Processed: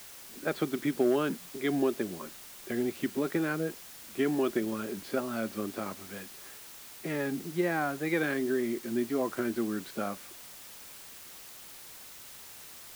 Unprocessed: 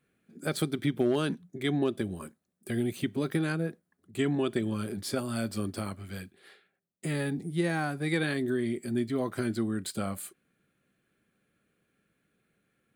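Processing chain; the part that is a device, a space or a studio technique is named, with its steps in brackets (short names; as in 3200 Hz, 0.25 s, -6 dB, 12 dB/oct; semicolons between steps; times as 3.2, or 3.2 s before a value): wax cylinder (BPF 260–2200 Hz; wow and flutter; white noise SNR 15 dB); gain +2 dB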